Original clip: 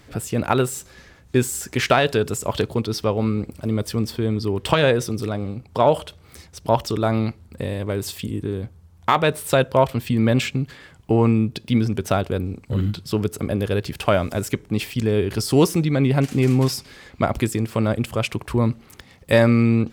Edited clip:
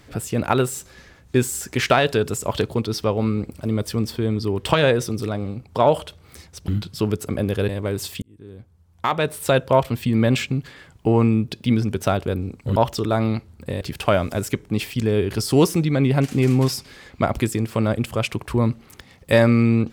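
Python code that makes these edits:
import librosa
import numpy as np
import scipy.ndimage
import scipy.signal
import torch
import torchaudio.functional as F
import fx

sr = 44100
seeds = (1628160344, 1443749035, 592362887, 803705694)

y = fx.edit(x, sr, fx.swap(start_s=6.68, length_s=1.05, other_s=12.8, other_length_s=1.01),
    fx.fade_in_span(start_s=8.26, length_s=1.38), tone=tone)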